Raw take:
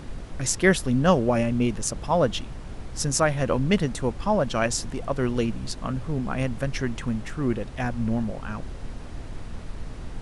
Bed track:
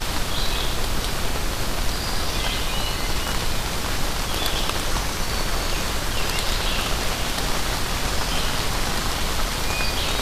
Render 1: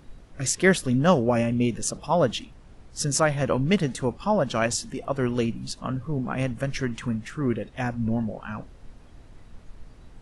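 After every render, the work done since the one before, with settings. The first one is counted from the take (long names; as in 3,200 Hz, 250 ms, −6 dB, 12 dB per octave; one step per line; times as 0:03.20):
noise reduction from a noise print 12 dB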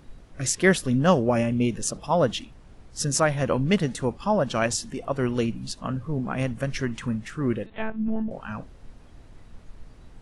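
0:07.66–0:08.31: one-pitch LPC vocoder at 8 kHz 220 Hz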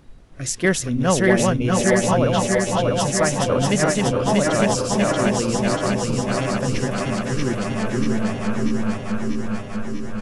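feedback delay that plays each chunk backwards 322 ms, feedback 83%, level −2 dB
on a send: repeating echo 634 ms, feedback 44%, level −6 dB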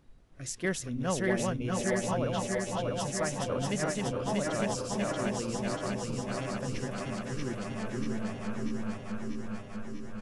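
level −12.5 dB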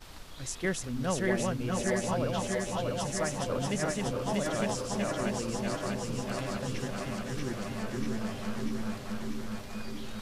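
mix in bed track −23.5 dB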